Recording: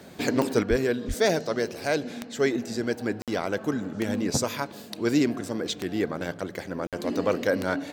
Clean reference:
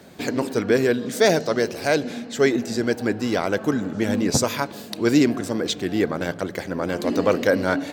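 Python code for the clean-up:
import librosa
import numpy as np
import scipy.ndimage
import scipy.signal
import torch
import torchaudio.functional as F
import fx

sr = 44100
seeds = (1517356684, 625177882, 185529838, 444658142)

y = fx.fix_declick_ar(x, sr, threshold=10.0)
y = fx.highpass(y, sr, hz=140.0, slope=24, at=(0.69, 0.81), fade=0.02)
y = fx.highpass(y, sr, hz=140.0, slope=24, at=(1.07, 1.19), fade=0.02)
y = fx.fix_interpolate(y, sr, at_s=(3.22, 6.87), length_ms=57.0)
y = fx.fix_level(y, sr, at_s=0.63, step_db=5.5)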